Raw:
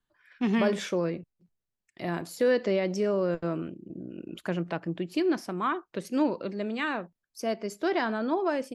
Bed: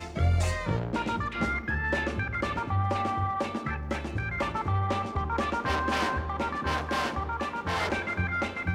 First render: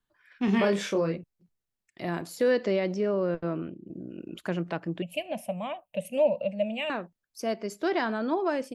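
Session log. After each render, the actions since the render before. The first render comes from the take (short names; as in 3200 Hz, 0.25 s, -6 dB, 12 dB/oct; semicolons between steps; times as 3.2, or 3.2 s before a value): 0.45–1.16 doubler 25 ms -3.5 dB; 2.94–3.88 air absorption 140 m; 5.02–6.9 EQ curve 220 Hz 0 dB, 380 Hz -27 dB, 580 Hz +13 dB, 1400 Hz -23 dB, 2700 Hz +9 dB, 4700 Hz -19 dB, 9600 Hz +5 dB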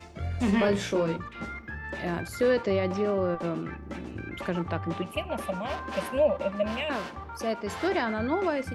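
add bed -8.5 dB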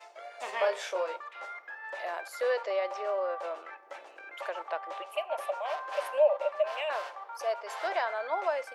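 steep high-pass 570 Hz 36 dB/oct; tilt shelf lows +5 dB, about 900 Hz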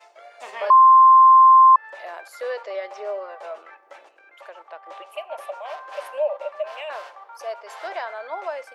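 0.7–1.76 bleep 1050 Hz -7.5 dBFS; 2.74–3.58 comb 4.7 ms; 4.09–4.86 gain -5.5 dB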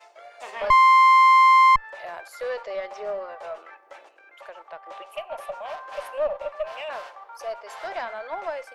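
one diode to ground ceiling -20.5 dBFS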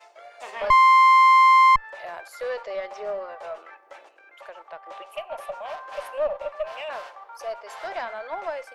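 nothing audible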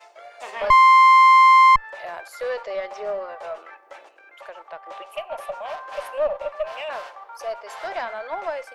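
gain +2.5 dB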